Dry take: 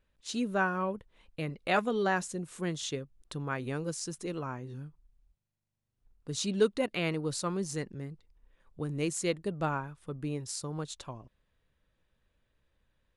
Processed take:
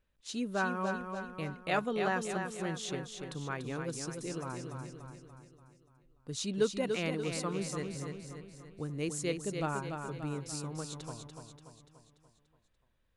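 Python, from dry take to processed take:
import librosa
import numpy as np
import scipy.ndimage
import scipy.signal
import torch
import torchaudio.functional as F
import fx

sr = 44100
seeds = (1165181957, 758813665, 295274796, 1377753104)

y = fx.echo_feedback(x, sr, ms=290, feedback_pct=52, wet_db=-6.0)
y = y * librosa.db_to_amplitude(-3.5)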